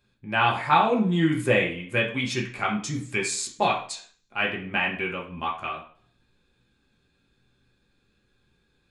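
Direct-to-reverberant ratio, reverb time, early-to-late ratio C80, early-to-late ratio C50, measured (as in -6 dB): -2.5 dB, 0.50 s, 12.5 dB, 8.0 dB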